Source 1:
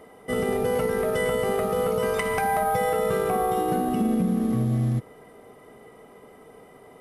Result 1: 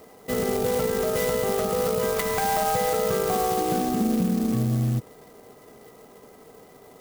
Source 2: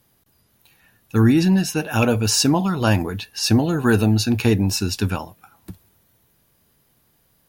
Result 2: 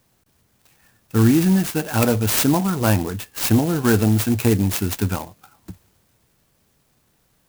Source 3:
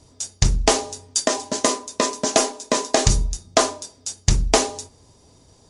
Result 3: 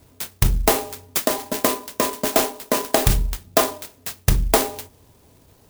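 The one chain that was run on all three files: clock jitter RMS 0.071 ms

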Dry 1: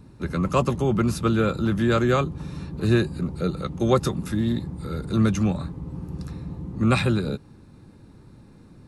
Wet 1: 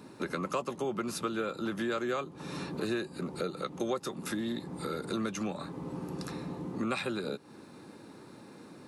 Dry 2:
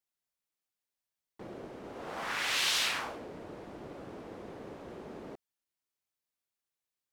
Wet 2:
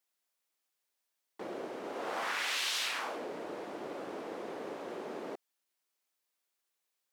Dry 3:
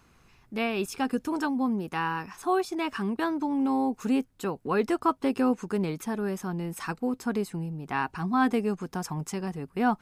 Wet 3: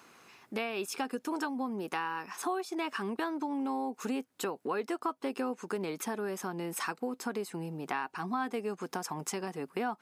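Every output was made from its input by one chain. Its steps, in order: HPF 320 Hz 12 dB/oct; compressor 4:1, threshold -39 dBFS; gain +6 dB

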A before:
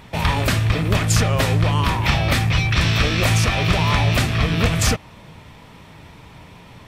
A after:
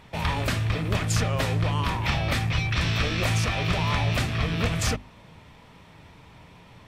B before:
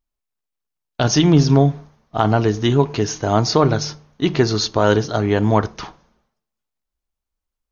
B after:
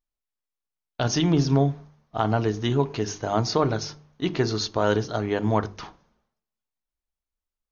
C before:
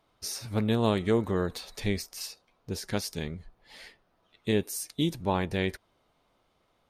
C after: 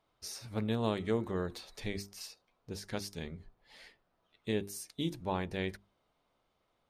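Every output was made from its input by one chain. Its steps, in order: high shelf 9700 Hz -5.5 dB; notches 50/100/150/200/250/300/350/400 Hz; gain -6.5 dB

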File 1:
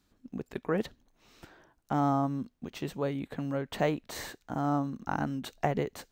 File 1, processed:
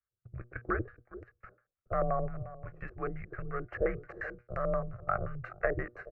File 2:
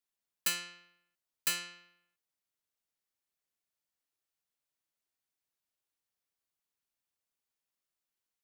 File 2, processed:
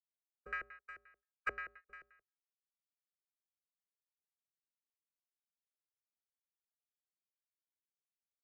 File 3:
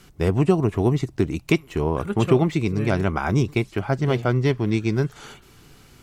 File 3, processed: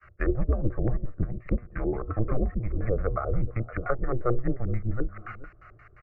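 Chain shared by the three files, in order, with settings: bin magnitudes rounded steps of 15 dB; bell 1300 Hz +10.5 dB 0.58 oct; gate -51 dBFS, range -24 dB; resonator 120 Hz, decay 0.29 s, harmonics all, mix 60%; echo 0.424 s -16.5 dB; LFO low-pass square 5.7 Hz 490–2100 Hz; high shelf 4900 Hz -7.5 dB; frequency shift -120 Hz; treble ducked by the level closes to 750 Hz, closed at -22.5 dBFS; fixed phaser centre 940 Hz, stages 6; gain +3.5 dB

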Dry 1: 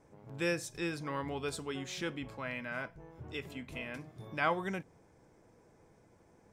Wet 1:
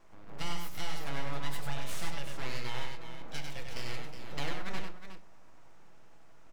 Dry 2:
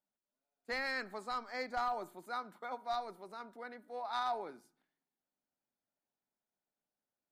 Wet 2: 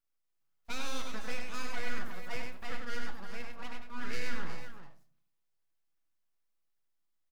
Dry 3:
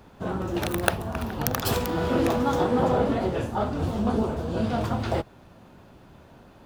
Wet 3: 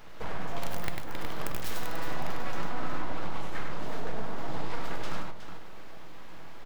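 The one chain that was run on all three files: HPF 250 Hz 6 dB/oct; bell 9300 Hz -8 dB 0.44 oct; compressor 6:1, threshold -38 dBFS; full-wave rectifier; on a send: tapped delay 98/366 ms -4.5/-9.5 dB; on the sum: shoebox room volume 360 m³, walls furnished, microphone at 0.66 m; gain +4.5 dB

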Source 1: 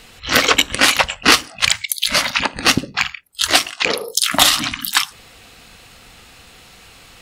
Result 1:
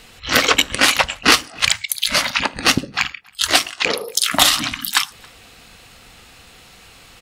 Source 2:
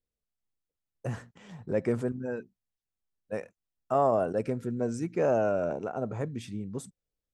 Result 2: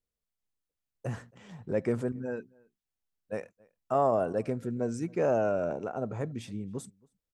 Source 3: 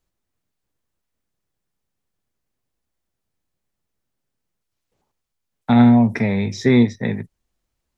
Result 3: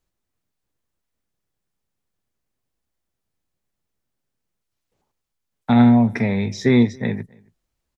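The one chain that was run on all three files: outdoor echo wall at 47 m, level -27 dB; gain -1 dB

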